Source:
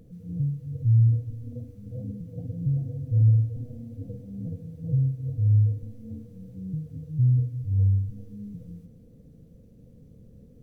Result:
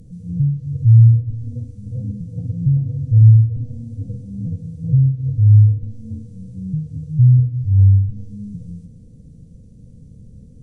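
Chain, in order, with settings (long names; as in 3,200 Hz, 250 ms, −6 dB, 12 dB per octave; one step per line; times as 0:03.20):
downsampling to 22,050 Hz
treble cut that deepens with the level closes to 560 Hz, closed at −16.5 dBFS
bass and treble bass +12 dB, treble +14 dB
level −1 dB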